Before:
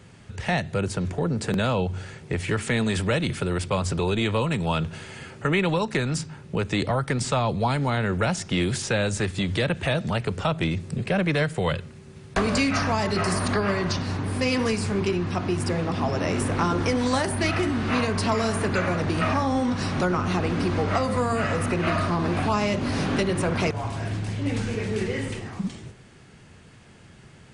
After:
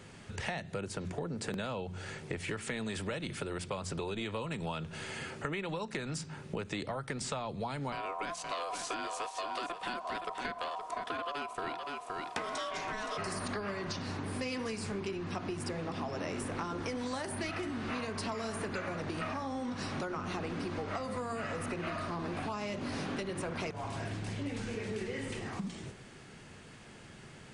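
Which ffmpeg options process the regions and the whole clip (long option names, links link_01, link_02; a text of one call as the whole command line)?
ffmpeg -i in.wav -filter_complex "[0:a]asettb=1/sr,asplit=3[link_01][link_02][link_03];[link_01]atrim=end=7.924[link_04];[link_02]atrim=start=7.92:end=13.18,asetpts=PTS-STARTPTS,afade=type=in:duration=0.004:curve=qsin,afade=type=out:start_time=5.256:duration=0.004:curve=qsin,aeval=exprs='val(0)*sin(2*PI*860*n/s)':channel_layout=same,aecho=1:1:519:0.335,atrim=end_sample=231966[link_05];[link_03]atrim=start=13.176[link_06];[link_04][link_05]acrossfade=duration=0.004:curve1=hsin:curve2=qsin[link_07];[link_07][link_06]acrossfade=duration=0.004:curve1=qsin:curve2=hsin,equalizer=frequency=74:width=0.67:gain=-6.5,bandreject=frequency=60:width_type=h:width=6,bandreject=frequency=120:width_type=h:width=6,bandreject=frequency=180:width_type=h:width=6,acompressor=threshold=-35dB:ratio=6" out.wav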